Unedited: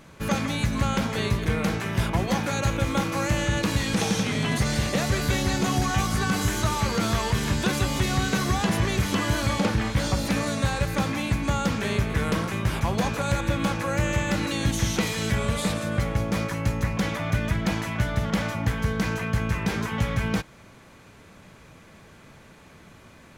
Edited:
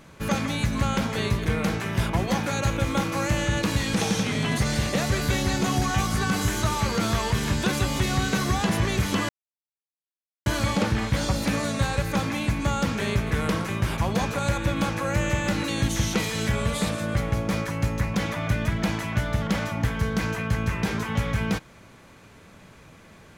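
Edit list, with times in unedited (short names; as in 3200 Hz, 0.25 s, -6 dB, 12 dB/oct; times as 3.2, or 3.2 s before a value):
9.29 insert silence 1.17 s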